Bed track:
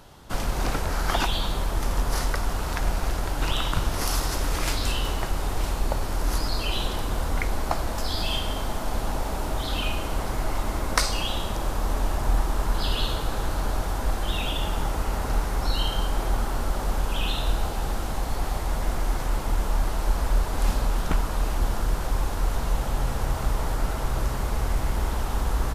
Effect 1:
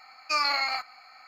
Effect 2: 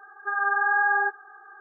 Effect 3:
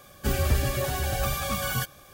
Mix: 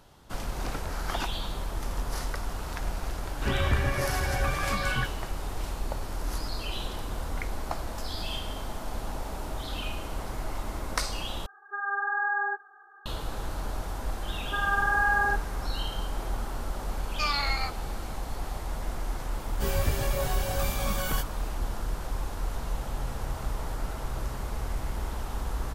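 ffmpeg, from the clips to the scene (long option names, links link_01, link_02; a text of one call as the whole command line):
ffmpeg -i bed.wav -i cue0.wav -i cue1.wav -i cue2.wav -filter_complex "[3:a]asplit=2[link_01][link_02];[2:a]asplit=2[link_03][link_04];[0:a]volume=-7dB[link_05];[link_01]lowpass=frequency=2000:width_type=q:width=2.2[link_06];[link_02]asplit=2[link_07][link_08];[link_08]adelay=20,volume=-2dB[link_09];[link_07][link_09]amix=inputs=2:normalize=0[link_10];[link_05]asplit=2[link_11][link_12];[link_11]atrim=end=11.464[link_13];[link_03]atrim=end=1.6,asetpts=PTS-STARTPTS,volume=-6dB[link_14];[link_12]atrim=start=13.056[link_15];[link_06]atrim=end=2.13,asetpts=PTS-STARTPTS,volume=-2.5dB,afade=type=in:duration=0.004:curve=hsin,afade=type=out:start_time=2.126:duration=0.004:curve=hsin,adelay=141561S[link_16];[link_04]atrim=end=1.6,asetpts=PTS-STARTPTS,volume=-2.5dB,afade=type=in:duration=0.004:curve=hsin,afade=type=out:start_time=1.596:duration=0.004:curve=hsin,adelay=14260[link_17];[1:a]atrim=end=1.27,asetpts=PTS-STARTPTS,volume=-3.5dB,afade=type=in:duration=0.004:curve=hsin,afade=type=out:start_time=1.266:duration=0.004:curve=hsin,adelay=16890[link_18];[link_10]atrim=end=2.13,asetpts=PTS-STARTPTS,volume=-5.5dB,afade=type=in:duration=0.004:curve=hsin,afade=type=out:start_time=2.126:duration=0.004:curve=hsin,adelay=19360[link_19];[link_13][link_14]acrossfade=duration=0.004:curve1=hsin:curve2=hsin[link_20];[link_20][link_15]acrossfade=duration=0.004:curve1=hsin:curve2=hsin[link_21];[link_21][link_16][link_17][link_18][link_19]amix=inputs=5:normalize=0" out.wav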